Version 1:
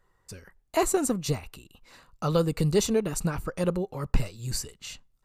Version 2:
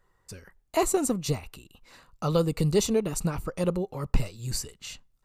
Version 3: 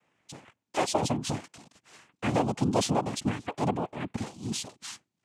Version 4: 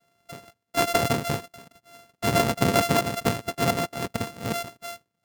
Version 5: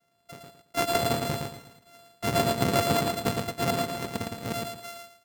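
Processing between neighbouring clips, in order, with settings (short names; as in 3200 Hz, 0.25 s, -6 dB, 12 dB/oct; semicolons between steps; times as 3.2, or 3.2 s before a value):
dynamic EQ 1600 Hz, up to -6 dB, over -53 dBFS, Q 4.3
soft clip -19 dBFS, distortion -13 dB; noise vocoder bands 4
sample sorter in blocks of 64 samples; gain +4.5 dB
feedback echo 0.112 s, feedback 29%, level -4 dB; gain -4 dB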